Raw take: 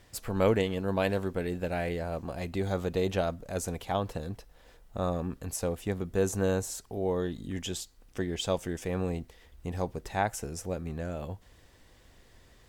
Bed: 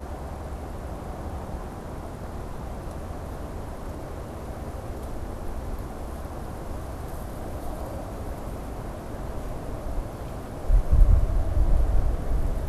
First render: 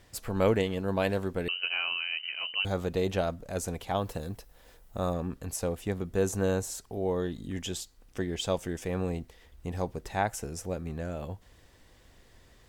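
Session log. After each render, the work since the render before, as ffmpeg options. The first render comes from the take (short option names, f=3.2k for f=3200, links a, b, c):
-filter_complex "[0:a]asettb=1/sr,asplit=3[a][b][c];[a]atrim=end=1.484[d];[b]atrim=start=1.48:end=2.65,asetpts=PTS-STARTPTS,afade=t=in:d=0.004:c=qsin,afade=t=out:st=1.166:d=0.004:c=qsin,lowpass=f=2.6k:t=q:w=0.5098,lowpass=f=2.6k:t=q:w=0.6013,lowpass=f=2.6k:t=q:w=0.9,lowpass=f=2.6k:t=q:w=2.563,afreqshift=-3100[e];[c]atrim=start=2.646[f];[d][e]acrossfade=d=0.004:c1=hsin:c2=qsin[g];[g][f]acrossfade=d=0.004:c1=qsin:c2=hsin,asettb=1/sr,asplit=3[h][i][j];[h]atrim=end=3.964[k];[i]atrim=start=3.96:end=5.14,asetpts=PTS-STARTPTS,afade=t=in:d=0.004:c=qsin,afade=t=out:st=1.176:d=0.004:c=qsin,highshelf=f=9.4k:g=11[l];[j]atrim=start=5.136[m];[k][l]acrossfade=d=0.004:c1=hsin:c2=qsin[n];[n][m]acrossfade=d=0.004:c1=qsin:c2=hsin"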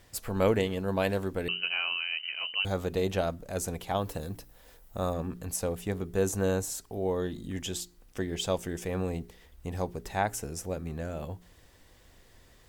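-af "highshelf=f=11k:g=7,bandreject=f=58.9:t=h:w=4,bandreject=f=117.8:t=h:w=4,bandreject=f=176.7:t=h:w=4,bandreject=f=235.6:t=h:w=4,bandreject=f=294.5:t=h:w=4,bandreject=f=353.4:t=h:w=4,bandreject=f=412.3:t=h:w=4"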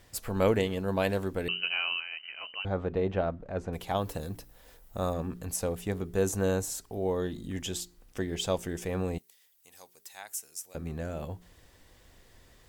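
-filter_complex "[0:a]asettb=1/sr,asplit=3[a][b][c];[a]atrim=end=2.004[d];[b]atrim=start=2:end=3.73,asetpts=PTS-STARTPTS,afade=t=in:d=0.004:c=qsin,afade=t=out:st=1.726:d=0.004:c=qsin,lowpass=1.9k[e];[c]atrim=start=3.726[f];[d][e]acrossfade=d=0.004:c1=hsin:c2=qsin[g];[g][f]acrossfade=d=0.004:c1=qsin:c2=hsin,asettb=1/sr,asplit=3[h][i][j];[h]atrim=end=9.184[k];[i]atrim=start=9.18:end=10.75,asetpts=PTS-STARTPTS,afade=t=in:d=0.004:c=qsin,afade=t=out:st=1.566:d=0.004:c=qsin,aderivative[l];[j]atrim=start=10.746[m];[k][l]acrossfade=d=0.004:c1=hsin:c2=qsin[n];[n][m]acrossfade=d=0.004:c1=qsin:c2=hsin"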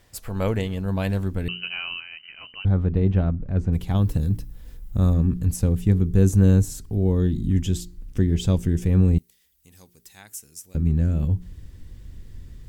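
-af "asubboost=boost=11.5:cutoff=200"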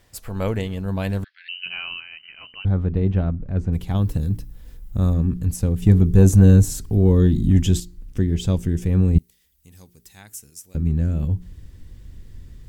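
-filter_complex "[0:a]asettb=1/sr,asplit=3[a][b][c];[a]atrim=end=1.244[d];[b]atrim=start=1.24:end=1.66,asetpts=PTS-STARTPTS,afade=t=in:d=0.004:c=qsin,afade=t=out:st=0.416:d=0.004:c=qsin,asuperpass=centerf=2800:order=12:qfactor=0.86[e];[c]atrim=start=1.656[f];[d][e]acrossfade=d=0.004:c1=hsin:c2=qsin[g];[g][f]acrossfade=d=0.004:c1=qsin:c2=hsin,asettb=1/sr,asplit=3[h][i][j];[h]atrim=end=5.824[k];[i]atrim=start=5.82:end=7.8,asetpts=PTS-STARTPTS,afade=t=in:d=0.004:c=qsin,afade=t=out:st=1.976:d=0.004:c=qsin,acontrast=52[l];[j]atrim=start=7.796[m];[k][l]acrossfade=d=0.004:c1=hsin:c2=qsin[n];[n][m]acrossfade=d=0.004:c1=qsin:c2=hsin,asettb=1/sr,asplit=3[o][p][q];[o]atrim=end=9.154[r];[p]atrim=start=9.15:end=10.5,asetpts=PTS-STARTPTS,afade=t=in:d=0.004:c=qsin,afade=t=out:st=1.346:d=0.004:c=qsin,lowshelf=f=230:g=7.5[s];[q]atrim=start=10.496[t];[r][s]acrossfade=d=0.004:c1=hsin:c2=qsin[u];[u][t]acrossfade=d=0.004:c1=qsin:c2=hsin"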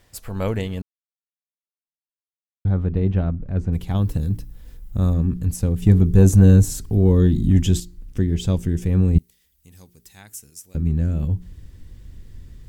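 -filter_complex "[0:a]asplit=3[a][b][c];[a]atrim=end=0.82,asetpts=PTS-STARTPTS,afade=t=out:st=0.816:d=0.004:c=hsin[d];[b]atrim=start=0.82:end=2.65,asetpts=PTS-STARTPTS,volume=0[e];[c]atrim=start=2.65,asetpts=PTS-STARTPTS,afade=t=in:d=0.004:c=hsin[f];[d][e][f]concat=n=3:v=0:a=1"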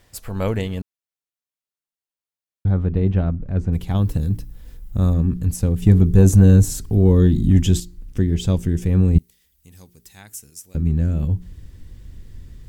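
-af "volume=1.5dB,alimiter=limit=-3dB:level=0:latency=1"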